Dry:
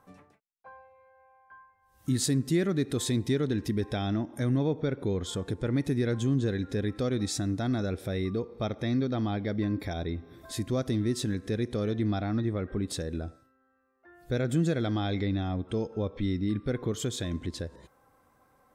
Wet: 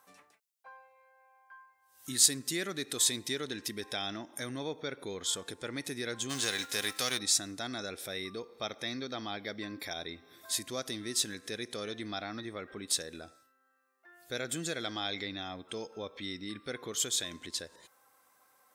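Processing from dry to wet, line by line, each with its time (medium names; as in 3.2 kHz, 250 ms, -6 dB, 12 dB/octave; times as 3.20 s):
6.29–7.17 s: formants flattened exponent 0.6
whole clip: high-pass 1.1 kHz 6 dB/octave; treble shelf 3.1 kHz +9.5 dB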